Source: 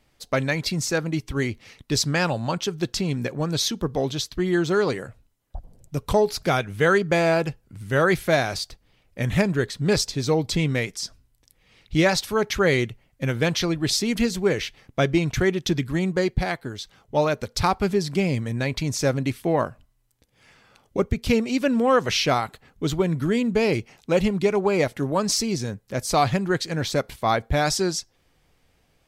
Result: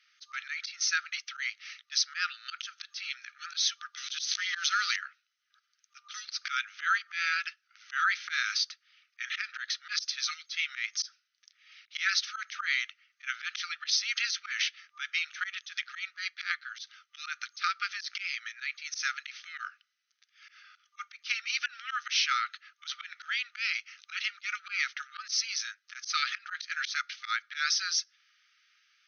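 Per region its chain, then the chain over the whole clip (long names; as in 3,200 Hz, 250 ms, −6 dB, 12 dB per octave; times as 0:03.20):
0:03.97–0:04.96: spike at every zero crossing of −27.5 dBFS + spectral tilt +1.5 dB per octave + level that may fall only so fast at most 28 dB per second
whole clip: brick-wall band-pass 1,200–6,400 Hz; downward compressor 2.5 to 1, threshold −29 dBFS; volume swells 101 ms; level +3.5 dB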